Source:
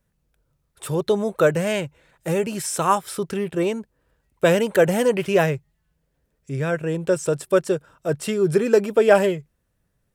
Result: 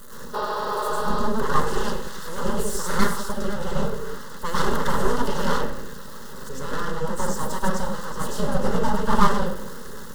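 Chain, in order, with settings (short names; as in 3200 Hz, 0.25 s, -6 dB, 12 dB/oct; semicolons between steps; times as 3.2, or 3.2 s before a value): zero-crossing step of -27 dBFS; reverb RT60 0.70 s, pre-delay 0.1 s, DRR -7 dB; full-wave rectifier; spectral repair 0.37–1.19, 280–5900 Hz after; fixed phaser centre 470 Hz, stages 8; gain -6 dB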